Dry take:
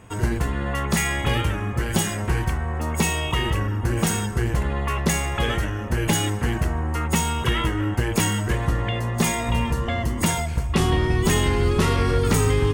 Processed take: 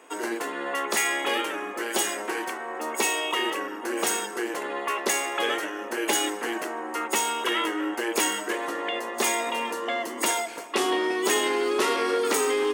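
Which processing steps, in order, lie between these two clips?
steep high-pass 300 Hz 36 dB/oct

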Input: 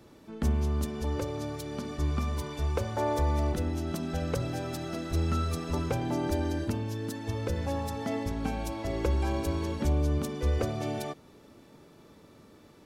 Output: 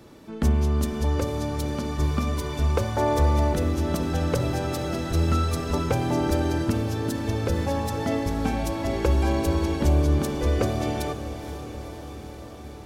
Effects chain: diffused feedback echo 0.491 s, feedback 72%, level -11 dB; gain +6 dB

